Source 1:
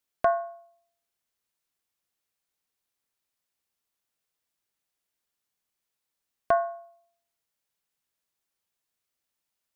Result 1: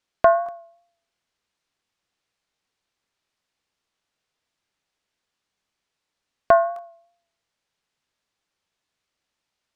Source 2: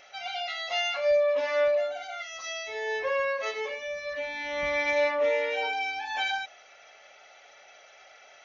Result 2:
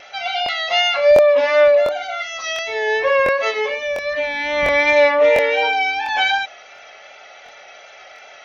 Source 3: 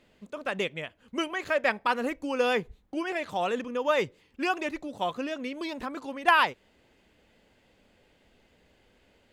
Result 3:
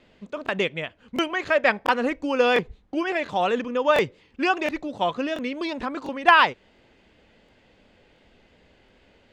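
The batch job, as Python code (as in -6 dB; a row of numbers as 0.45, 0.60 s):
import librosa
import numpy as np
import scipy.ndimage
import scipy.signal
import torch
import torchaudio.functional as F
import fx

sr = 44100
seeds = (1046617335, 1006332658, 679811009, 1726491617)

y = scipy.signal.sosfilt(scipy.signal.butter(2, 5500.0, 'lowpass', fs=sr, output='sos'), x)
y = fx.vibrato(y, sr, rate_hz=2.7, depth_cents=25.0)
y = fx.buffer_crackle(y, sr, first_s=0.44, period_s=0.7, block=1024, kind='repeat')
y = y * 10.0 ** (-3 / 20.0) / np.max(np.abs(y))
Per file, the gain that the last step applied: +8.0, +12.0, +6.0 dB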